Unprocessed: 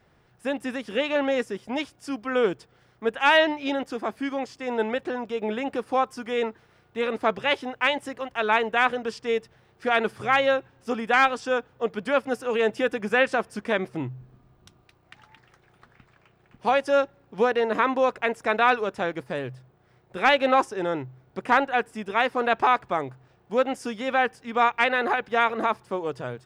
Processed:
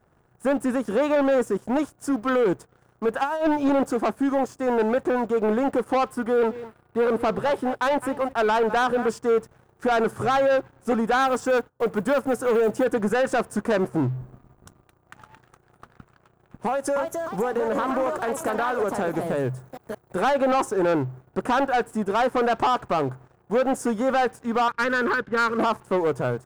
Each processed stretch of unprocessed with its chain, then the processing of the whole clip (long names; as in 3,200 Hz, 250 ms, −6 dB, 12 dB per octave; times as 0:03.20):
0:03.22–0:03.92: parametric band 2,000 Hz −15 dB 0.28 octaves + compressor whose output falls as the input rises −25 dBFS, ratio −0.5
0:06.10–0:09.09: parametric band 6,300 Hz −12.5 dB 0.48 octaves + single-tap delay 208 ms −20 dB
0:11.22–0:12.85: one scale factor per block 7 bits + noise gate −54 dBFS, range −13 dB
0:16.66–0:20.21: downward compressor 12 to 1, threshold −28 dBFS + high-shelf EQ 5,600 Hz +7.5 dB + delay with pitch and tempo change per echo 302 ms, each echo +3 semitones, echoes 2, each echo −6 dB
0:24.68–0:25.59: low-pass filter 2,900 Hz + phaser with its sweep stopped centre 1,800 Hz, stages 4
whole clip: flat-topped bell 3,200 Hz −14.5 dB; brickwall limiter −17 dBFS; leveller curve on the samples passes 2; level +2 dB